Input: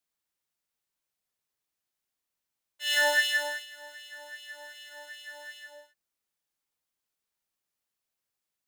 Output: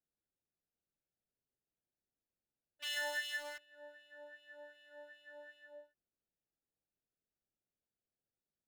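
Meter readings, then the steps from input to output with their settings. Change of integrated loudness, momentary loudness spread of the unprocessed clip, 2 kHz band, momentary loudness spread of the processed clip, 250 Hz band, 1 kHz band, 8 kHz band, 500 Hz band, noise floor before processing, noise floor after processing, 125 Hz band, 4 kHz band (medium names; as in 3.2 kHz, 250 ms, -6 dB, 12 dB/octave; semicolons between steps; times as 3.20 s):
-14.0 dB, 21 LU, -14.0 dB, 20 LU, -10.0 dB, -14.5 dB, -14.0 dB, -12.5 dB, under -85 dBFS, under -85 dBFS, no reading, -13.5 dB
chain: local Wiener filter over 41 samples; compression 2.5:1, threshold -47 dBFS, peak gain reduction 17.5 dB; trim +2 dB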